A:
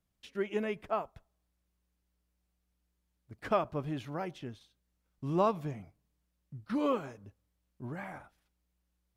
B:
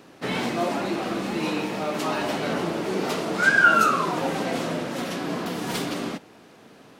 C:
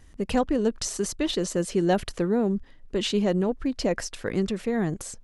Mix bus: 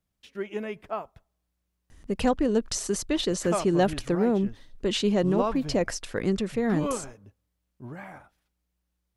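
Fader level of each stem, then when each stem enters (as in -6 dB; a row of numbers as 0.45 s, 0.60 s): +0.5 dB, mute, 0.0 dB; 0.00 s, mute, 1.90 s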